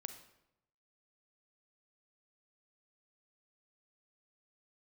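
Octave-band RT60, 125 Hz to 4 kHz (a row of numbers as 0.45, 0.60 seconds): 1.1, 0.90, 0.90, 0.85, 0.70, 0.60 seconds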